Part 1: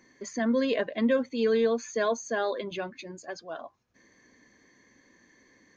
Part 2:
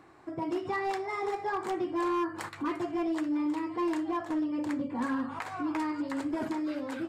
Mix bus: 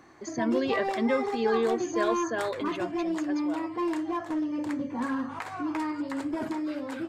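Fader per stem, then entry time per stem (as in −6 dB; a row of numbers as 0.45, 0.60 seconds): −2.0, +1.0 decibels; 0.00, 0.00 seconds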